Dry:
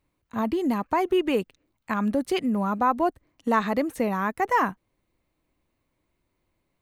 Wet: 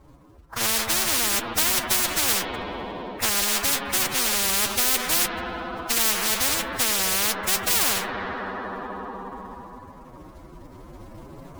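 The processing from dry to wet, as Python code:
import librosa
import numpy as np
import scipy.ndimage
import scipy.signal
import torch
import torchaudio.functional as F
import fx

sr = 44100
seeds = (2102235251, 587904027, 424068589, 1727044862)

y = fx.recorder_agc(x, sr, target_db=-17.5, rise_db_per_s=5.4, max_gain_db=30)
y = scipy.signal.sosfilt(scipy.signal.butter(4, 1400.0, 'lowpass', fs=sr, output='sos'), y)
y = fx.quant_float(y, sr, bits=2)
y = fx.rev_spring(y, sr, rt60_s=1.9, pass_ms=(36, 48), chirp_ms=55, drr_db=11.5)
y = fx.cheby_harmonics(y, sr, harmonics=(8,), levels_db=(-26,), full_scale_db=-10.5)
y = fx.stretch_vocoder(y, sr, factor=1.7)
y = fx.spectral_comp(y, sr, ratio=10.0)
y = F.gain(torch.from_numpy(y), 4.0).numpy()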